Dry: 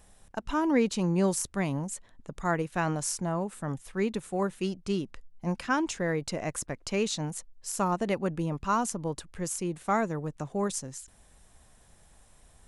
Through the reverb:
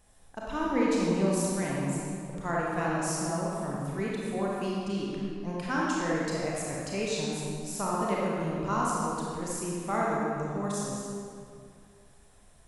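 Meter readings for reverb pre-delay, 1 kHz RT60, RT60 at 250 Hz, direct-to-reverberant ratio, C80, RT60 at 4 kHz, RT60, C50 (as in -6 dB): 27 ms, 2.3 s, 2.6 s, -5.5 dB, -1.0 dB, 1.6 s, 2.4 s, -3.5 dB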